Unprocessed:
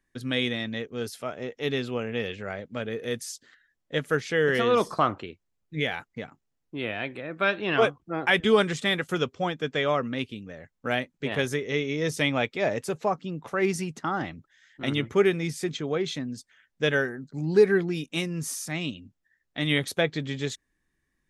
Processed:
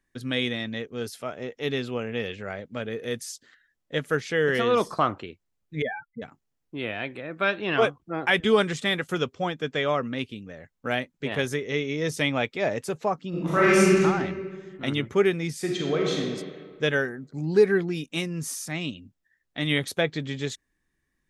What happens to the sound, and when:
5.82–6.22 s: spectral contrast enhancement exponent 3.9
13.29–14.00 s: reverb throw, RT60 1.8 s, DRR -10 dB
15.58–16.19 s: reverb throw, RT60 1.8 s, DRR -1 dB

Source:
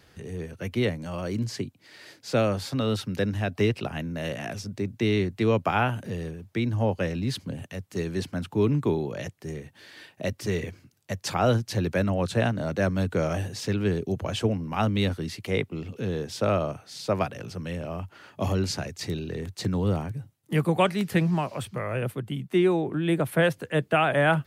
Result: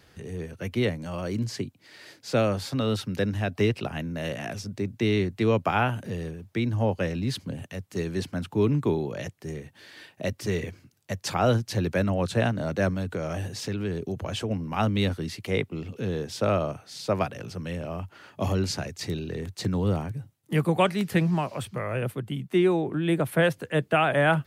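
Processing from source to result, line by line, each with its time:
12.94–14.51 s: compression 3:1, threshold -27 dBFS

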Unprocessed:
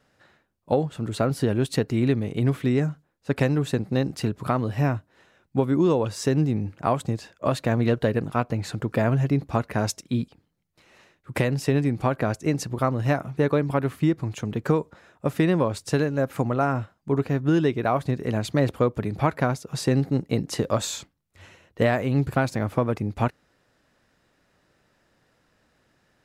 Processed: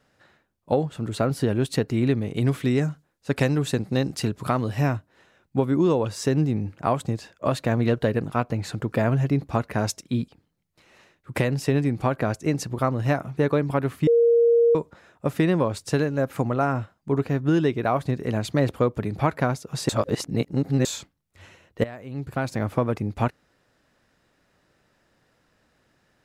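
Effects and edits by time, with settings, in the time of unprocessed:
2.35–4.97 s: peaking EQ 8 kHz +5.5 dB 2.6 oct
14.07–14.75 s: bleep 468 Hz -14 dBFS
19.89–20.85 s: reverse
21.84–22.59 s: fade in quadratic, from -17 dB

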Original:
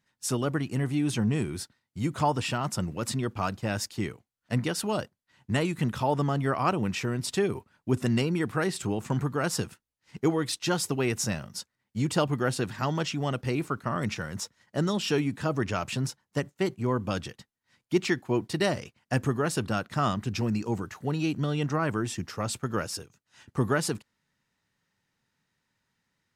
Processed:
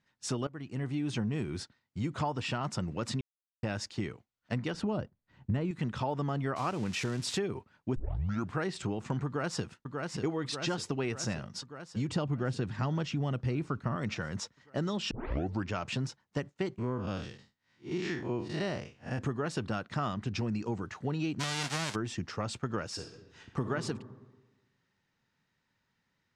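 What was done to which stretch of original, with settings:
0.47–1.22 s: fade in, from -20.5 dB
3.21–3.63 s: mute
4.74–5.71 s: tilt EQ -3 dB/octave
6.56–7.38 s: zero-crossing glitches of -24.5 dBFS
7.96 s: tape start 0.60 s
9.26–9.66 s: echo throw 590 ms, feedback 70%, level -8 dB
12.09–13.96 s: bass shelf 240 Hz +10 dB
15.11 s: tape start 0.58 s
16.78–19.19 s: spectral blur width 119 ms
21.39–21.94 s: formants flattened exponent 0.1
22.91–23.71 s: reverb throw, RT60 1.2 s, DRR 4.5 dB
whole clip: Bessel low-pass 5.3 kHz, order 4; compression 4:1, threshold -30 dBFS

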